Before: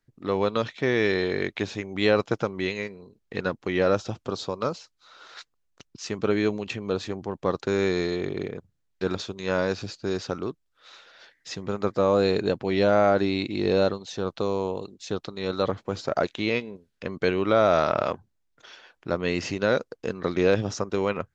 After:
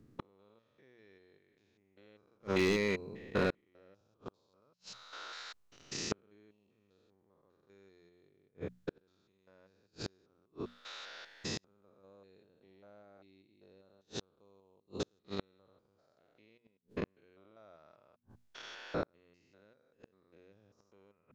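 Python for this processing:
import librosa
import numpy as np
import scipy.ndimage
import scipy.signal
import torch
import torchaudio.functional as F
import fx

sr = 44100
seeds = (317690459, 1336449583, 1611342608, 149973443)

y = fx.spec_steps(x, sr, hold_ms=200)
y = fx.hum_notches(y, sr, base_hz=60, count=4)
y = fx.clip_hard(y, sr, threshold_db=-27.5, at=(2.34, 3.5), fade=0.02)
y = fx.gate_flip(y, sr, shuts_db=-27.0, range_db=-42)
y = y * librosa.db_to_amplitude(4.0)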